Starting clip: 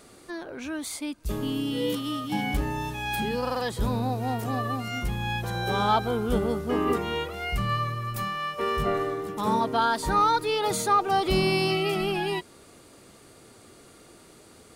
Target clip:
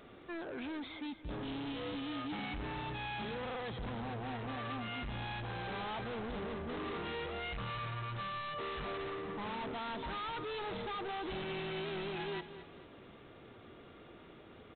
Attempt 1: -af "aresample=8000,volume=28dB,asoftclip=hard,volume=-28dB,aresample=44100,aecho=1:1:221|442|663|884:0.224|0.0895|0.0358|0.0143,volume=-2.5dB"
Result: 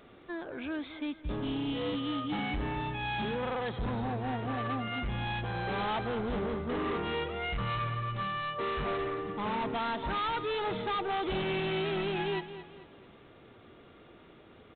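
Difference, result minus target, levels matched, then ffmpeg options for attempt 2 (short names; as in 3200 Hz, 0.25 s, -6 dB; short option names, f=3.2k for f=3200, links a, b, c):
overloaded stage: distortion -4 dB
-af "aresample=8000,volume=37dB,asoftclip=hard,volume=-37dB,aresample=44100,aecho=1:1:221|442|663|884:0.224|0.0895|0.0358|0.0143,volume=-2.5dB"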